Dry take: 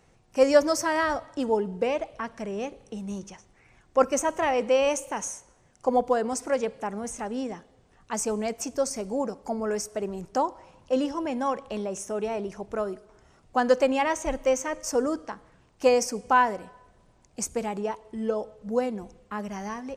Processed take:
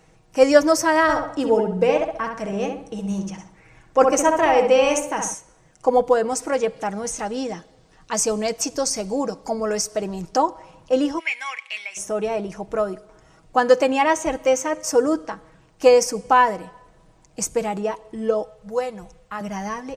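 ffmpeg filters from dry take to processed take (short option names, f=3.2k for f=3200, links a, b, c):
-filter_complex "[0:a]asettb=1/sr,asplit=3[a][b][c];[a]atrim=end=1.024[d];[b]atrim=start=1.02:end=5.34,asetpts=PTS-STARTPTS,afade=t=in:d=0.004:c=qsin,afade=t=out:st=4.316:d=0.004:c=qsin,asplit=2[e][f];[f]adelay=66,lowpass=f=2k:p=1,volume=-3.5dB,asplit=2[g][h];[h]adelay=66,lowpass=f=2k:p=1,volume=0.44,asplit=2[i][j];[j]adelay=66,lowpass=f=2k:p=1,volume=0.44,asplit=2[k][l];[l]adelay=66,lowpass=f=2k:p=1,volume=0.44,asplit=2[m][n];[n]adelay=66,lowpass=f=2k:p=1,volume=0.44,asplit=2[o][p];[p]adelay=66,lowpass=f=2k:p=1,volume=0.44[q];[e][g][i][k][m][o][q]amix=inputs=7:normalize=0,atrim=end_sample=190512[r];[c]atrim=start=5.336[s];[d][r]acrossfade=d=0.004:c1=hsin:c2=qsin[t];[t][s]acrossfade=d=0.004:c1=qsin:c2=hsin,asettb=1/sr,asplit=3[u][v][w];[u]atrim=end=6.764[x];[v]atrim=start=6.76:end=10.37,asetpts=PTS-STARTPTS,afade=t=in:d=0.004:c=qsin,afade=t=out:st=3.606:d=0.004:c=qsin,equalizer=f=4.7k:w=1.3:g=7[y];[w]atrim=start=10.366[z];[x][y]acrossfade=d=0.004:c1=hsin:c2=qsin[aa];[aa][z]acrossfade=d=0.004:c1=qsin:c2=hsin,asplit=3[ab][ac][ad];[ab]afade=t=out:st=11.18:d=0.02[ae];[ac]highpass=f=2.2k:t=q:w=11,afade=t=in:st=11.18:d=0.02,afade=t=out:st=11.96:d=0.02[af];[ad]afade=t=in:st=11.96:d=0.02[ag];[ae][af][ag]amix=inputs=3:normalize=0,asettb=1/sr,asplit=3[ah][ai][aj];[ah]atrim=end=13.584[ak];[ai]atrim=start=13.58:end=15.13,asetpts=PTS-STARTPTS,afade=t=in:d=0.004:c=qsin,afade=t=out:st=1.546:d=0.004:c=qsin,highpass=63[al];[aj]atrim=start=15.126[am];[ak][al]acrossfade=d=0.004:c1=hsin:c2=qsin[an];[an][am]acrossfade=d=0.004:c1=qsin:c2=hsin,asettb=1/sr,asplit=3[ao][ap][aq];[ao]atrim=end=18.434[ar];[ap]atrim=start=18.43:end=19.41,asetpts=PTS-STARTPTS,afade=t=in:d=0.004:c=qsin,afade=t=out:st=0.976:d=0.004:c=qsin,equalizer=f=290:w=1.2:g=-14[as];[aq]atrim=start=19.406[at];[ar][as]acrossfade=d=0.004:c1=hsin:c2=qsin[au];[au][at]acrossfade=d=0.004:c1=qsin:c2=hsin,aecho=1:1:6.3:0.48,volume=5dB"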